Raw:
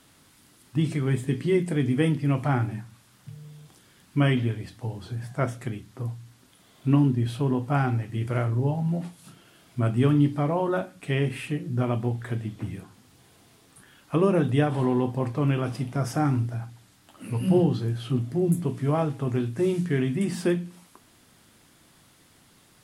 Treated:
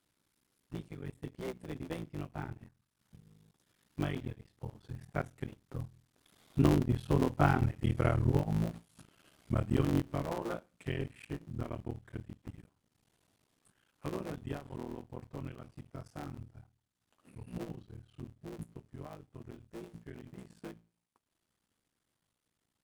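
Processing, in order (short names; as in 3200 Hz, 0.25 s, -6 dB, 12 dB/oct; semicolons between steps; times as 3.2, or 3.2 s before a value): cycle switcher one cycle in 3, muted; Doppler pass-by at 7.81, 15 m/s, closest 17 m; transient shaper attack +4 dB, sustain -9 dB; gain -2.5 dB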